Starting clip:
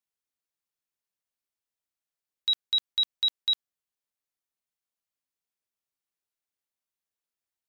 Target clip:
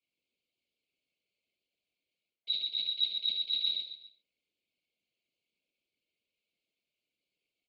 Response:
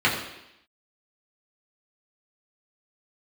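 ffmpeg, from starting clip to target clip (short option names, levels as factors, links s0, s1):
-filter_complex "[0:a]highpass=73,equalizer=f=120:t=o:w=1.3:g=-8,aecho=1:1:135|270|405|540:0.531|0.149|0.0416|0.0117[s0];[1:a]atrim=start_sample=2205,afade=t=out:st=0.19:d=0.01,atrim=end_sample=8820[s1];[s0][s1]afir=irnorm=-1:irlink=0,afftfilt=real='re*(1-between(b*sr/4096,680,2100))':imag='im*(1-between(b*sr/4096,680,2100))':win_size=4096:overlap=0.75,areverse,acompressor=threshold=0.0794:ratio=12,areverse,lowpass=4800,afftfilt=real='hypot(re,im)*cos(2*PI*random(0))':imag='hypot(re,im)*sin(2*PI*random(1))':win_size=512:overlap=0.75"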